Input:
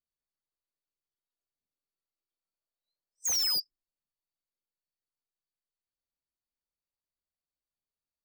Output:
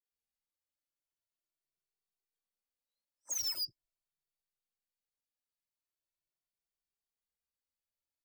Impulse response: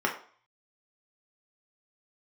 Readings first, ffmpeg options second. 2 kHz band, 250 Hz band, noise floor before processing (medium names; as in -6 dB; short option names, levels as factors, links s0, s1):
-9.0 dB, no reading, under -85 dBFS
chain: -filter_complex "[0:a]alimiter=level_in=2.66:limit=0.0631:level=0:latency=1,volume=0.376,acrossover=split=240|1200[s0][s1][s2];[s2]adelay=50[s3];[s0]adelay=120[s4];[s4][s1][s3]amix=inputs=3:normalize=0,asplit=2[s5][s6];[s6]adelay=2.1,afreqshift=0.42[s7];[s5][s7]amix=inputs=2:normalize=1"